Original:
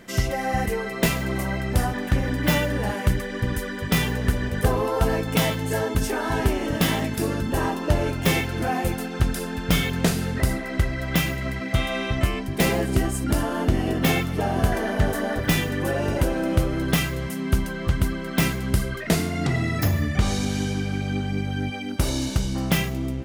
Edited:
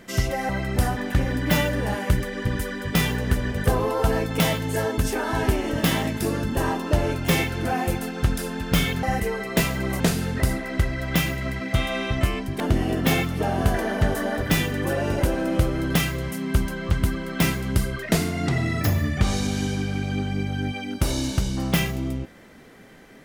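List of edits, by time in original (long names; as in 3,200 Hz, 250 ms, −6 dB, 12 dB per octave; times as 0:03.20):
0:00.49–0:01.46: move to 0:10.00
0:12.60–0:13.58: remove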